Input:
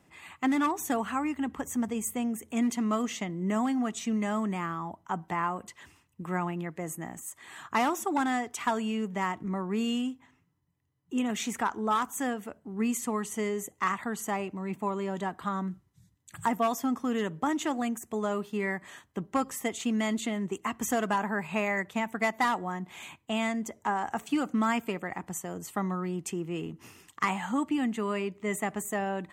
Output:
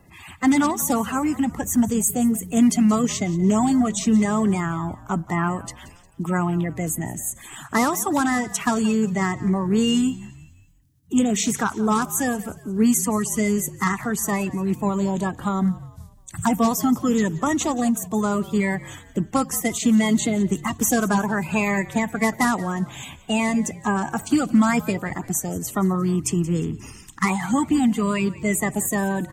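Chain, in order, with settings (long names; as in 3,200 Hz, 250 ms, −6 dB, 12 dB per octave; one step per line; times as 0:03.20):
spectral magnitudes quantised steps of 30 dB
bass and treble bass +13 dB, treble +9 dB
echo with shifted repeats 177 ms, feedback 45%, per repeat −53 Hz, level −18.5 dB
level +5 dB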